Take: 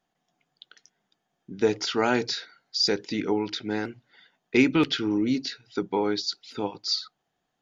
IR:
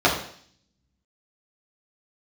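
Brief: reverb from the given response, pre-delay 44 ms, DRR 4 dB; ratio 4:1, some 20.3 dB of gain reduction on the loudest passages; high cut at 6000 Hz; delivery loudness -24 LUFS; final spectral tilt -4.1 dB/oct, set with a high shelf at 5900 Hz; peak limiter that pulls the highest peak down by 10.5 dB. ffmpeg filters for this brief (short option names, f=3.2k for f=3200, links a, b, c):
-filter_complex "[0:a]lowpass=6k,highshelf=f=5.9k:g=6,acompressor=threshold=-40dB:ratio=4,alimiter=level_in=9.5dB:limit=-24dB:level=0:latency=1,volume=-9.5dB,asplit=2[a][b];[1:a]atrim=start_sample=2205,adelay=44[c];[b][c]afir=irnorm=-1:irlink=0,volume=-24.5dB[d];[a][d]amix=inputs=2:normalize=0,volume=18.5dB"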